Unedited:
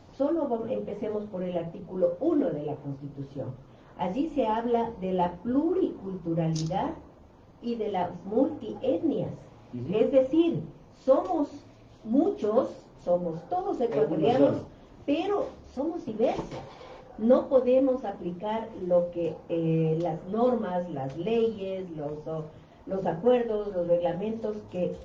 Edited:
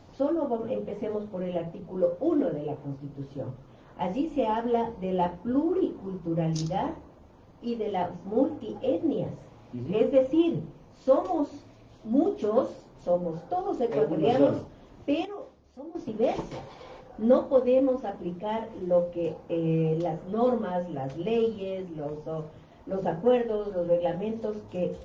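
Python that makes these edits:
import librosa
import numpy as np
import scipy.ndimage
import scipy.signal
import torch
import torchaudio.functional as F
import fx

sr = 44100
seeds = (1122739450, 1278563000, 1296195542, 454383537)

y = fx.edit(x, sr, fx.clip_gain(start_s=15.25, length_s=0.7, db=-11.5), tone=tone)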